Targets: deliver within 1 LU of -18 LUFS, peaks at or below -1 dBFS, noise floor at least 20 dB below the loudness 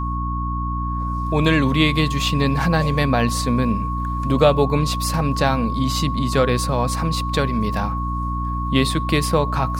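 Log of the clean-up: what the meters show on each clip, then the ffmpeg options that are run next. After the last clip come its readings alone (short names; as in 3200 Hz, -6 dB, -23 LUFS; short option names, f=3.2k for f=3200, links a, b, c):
hum 60 Hz; harmonics up to 300 Hz; hum level -22 dBFS; steady tone 1100 Hz; tone level -26 dBFS; loudness -20.0 LUFS; peak -2.0 dBFS; loudness target -18.0 LUFS
-> -af "bandreject=f=60:t=h:w=4,bandreject=f=120:t=h:w=4,bandreject=f=180:t=h:w=4,bandreject=f=240:t=h:w=4,bandreject=f=300:t=h:w=4"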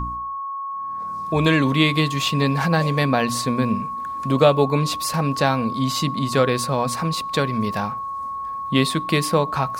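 hum none; steady tone 1100 Hz; tone level -26 dBFS
-> -af "bandreject=f=1.1k:w=30"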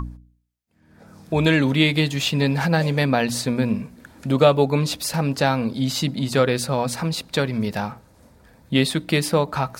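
steady tone none; loudness -21.0 LUFS; peak -3.0 dBFS; loudness target -18.0 LUFS
-> -af "volume=3dB,alimiter=limit=-1dB:level=0:latency=1"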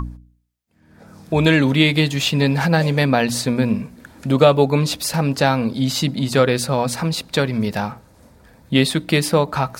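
loudness -18.0 LUFS; peak -1.0 dBFS; noise floor -55 dBFS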